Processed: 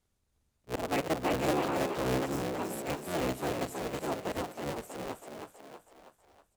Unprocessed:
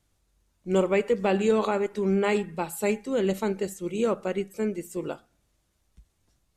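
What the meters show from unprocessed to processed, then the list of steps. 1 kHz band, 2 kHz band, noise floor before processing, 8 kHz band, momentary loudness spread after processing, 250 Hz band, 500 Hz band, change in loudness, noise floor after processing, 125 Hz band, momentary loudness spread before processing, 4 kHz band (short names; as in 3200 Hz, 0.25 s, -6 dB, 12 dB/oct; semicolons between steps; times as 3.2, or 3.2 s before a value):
-2.0 dB, -4.0 dB, -72 dBFS, -2.0 dB, 16 LU, -7.0 dB, -8.5 dB, -7.0 dB, -77 dBFS, -4.5 dB, 10 LU, -0.5 dB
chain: cycle switcher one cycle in 3, inverted; auto swell 0.102 s; spectral delete 2.26–2.51, 400–4900 Hz; frequency-shifting echo 0.322 s, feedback 51%, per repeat +44 Hz, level -5 dB; gain -7.5 dB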